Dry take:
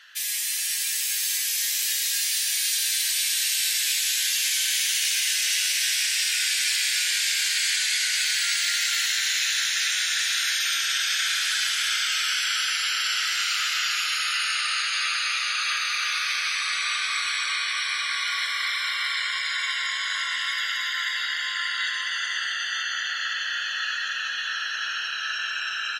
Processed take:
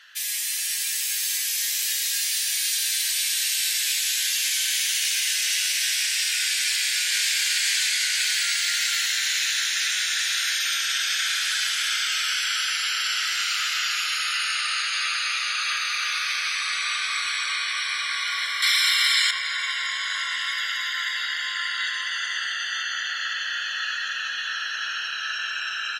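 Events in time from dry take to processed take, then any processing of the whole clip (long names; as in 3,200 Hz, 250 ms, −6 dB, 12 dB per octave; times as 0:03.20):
0:06.57–0:07.35: delay throw 540 ms, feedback 70%, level −6 dB
0:18.62–0:19.31: spectral tilt +4.5 dB per octave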